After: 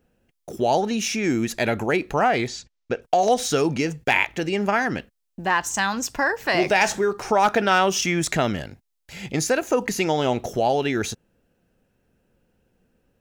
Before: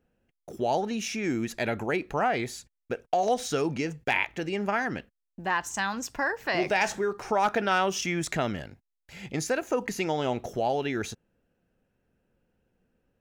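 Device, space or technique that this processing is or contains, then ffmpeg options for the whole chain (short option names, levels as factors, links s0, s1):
exciter from parts: -filter_complex "[0:a]asplit=3[s0][s1][s2];[s0]afade=t=out:st=2.46:d=0.02[s3];[s1]lowpass=f=6300:w=0.5412,lowpass=f=6300:w=1.3066,afade=t=in:st=2.46:d=0.02,afade=t=out:st=3.01:d=0.02[s4];[s2]afade=t=in:st=3.01:d=0.02[s5];[s3][s4][s5]amix=inputs=3:normalize=0,asplit=2[s6][s7];[s7]highpass=2600,asoftclip=type=tanh:threshold=0.0188,volume=0.473[s8];[s6][s8]amix=inputs=2:normalize=0,volume=2.11"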